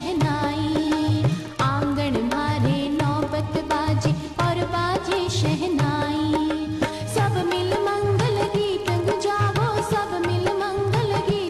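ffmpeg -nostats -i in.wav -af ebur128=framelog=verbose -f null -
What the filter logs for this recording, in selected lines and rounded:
Integrated loudness:
  I:         -22.8 LUFS
  Threshold: -32.8 LUFS
Loudness range:
  LRA:         0.7 LU
  Threshold: -42.8 LUFS
  LRA low:   -23.1 LUFS
  LRA high:  -22.4 LUFS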